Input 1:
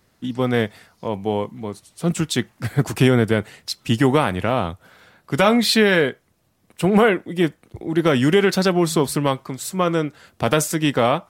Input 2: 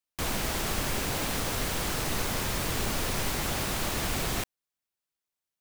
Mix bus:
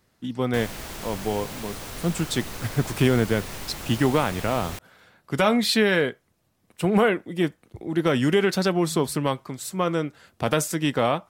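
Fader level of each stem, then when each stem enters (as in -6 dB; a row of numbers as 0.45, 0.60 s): -4.5, -6.0 dB; 0.00, 0.35 s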